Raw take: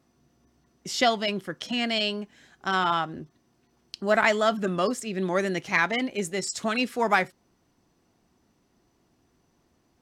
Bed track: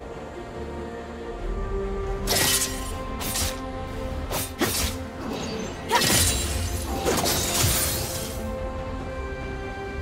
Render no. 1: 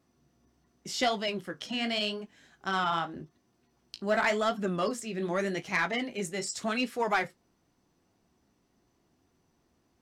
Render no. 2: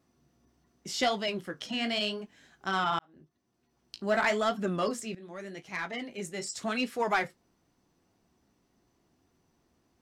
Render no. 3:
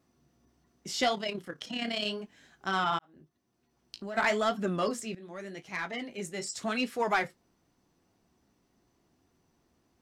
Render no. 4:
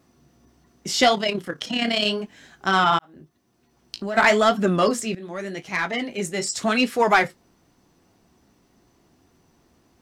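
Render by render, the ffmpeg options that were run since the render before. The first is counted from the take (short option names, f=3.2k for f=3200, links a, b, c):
-af "flanger=delay=9.8:depth=9.5:regen=-42:speed=0.86:shape=triangular,asoftclip=type=tanh:threshold=-17.5dB"
-filter_complex "[0:a]asplit=3[a][b][c];[a]atrim=end=2.99,asetpts=PTS-STARTPTS,afade=t=out:st=2.986:d=0.004:c=hsin[d];[b]atrim=start=2.99:end=5.15,asetpts=PTS-STARTPTS,afade=t=in:d=1.07,afade=t=out:st=2.156:d=0.004:c=hsin:silence=0.133352[e];[c]atrim=start=5.15,asetpts=PTS-STARTPTS,afade=t=in:d=1.79:silence=0.133352[f];[d][e][f]concat=n=3:v=0:a=1"
-filter_complex "[0:a]asplit=3[a][b][c];[a]afade=t=out:st=1.13:d=0.02[d];[b]tremolo=f=34:d=0.571,afade=t=in:st=1.13:d=0.02,afade=t=out:st=2.05:d=0.02[e];[c]afade=t=in:st=2.05:d=0.02[f];[d][e][f]amix=inputs=3:normalize=0,asplit=3[g][h][i];[g]afade=t=out:st=2.97:d=0.02[j];[h]acompressor=threshold=-36dB:ratio=6:attack=3.2:release=140:knee=1:detection=peak,afade=t=in:st=2.97:d=0.02,afade=t=out:st=4.16:d=0.02[k];[i]afade=t=in:st=4.16:d=0.02[l];[j][k][l]amix=inputs=3:normalize=0"
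-af "volume=10.5dB"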